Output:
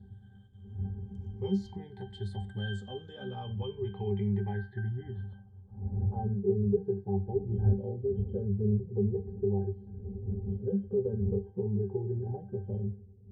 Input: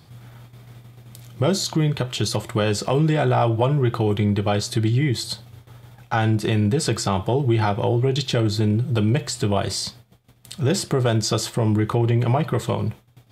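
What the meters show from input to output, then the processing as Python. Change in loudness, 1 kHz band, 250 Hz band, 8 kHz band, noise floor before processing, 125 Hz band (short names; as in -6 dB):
-12.0 dB, -20.5 dB, -11.0 dB, under -40 dB, -52 dBFS, -11.0 dB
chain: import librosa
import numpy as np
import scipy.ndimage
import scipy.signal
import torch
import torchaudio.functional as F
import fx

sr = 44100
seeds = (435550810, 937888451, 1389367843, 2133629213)

y = fx.spec_ripple(x, sr, per_octave=0.81, drift_hz=-0.4, depth_db=12)
y = fx.dmg_wind(y, sr, seeds[0], corner_hz=110.0, level_db=-25.0)
y = fx.high_shelf(y, sr, hz=5700.0, db=7.0)
y = fx.octave_resonator(y, sr, note='G', decay_s=0.22)
y = fx.filter_sweep_lowpass(y, sr, from_hz=8500.0, to_hz=470.0, start_s=2.58, end_s=6.49, q=2.7)
y = F.gain(torch.from_numpy(y), -4.5).numpy()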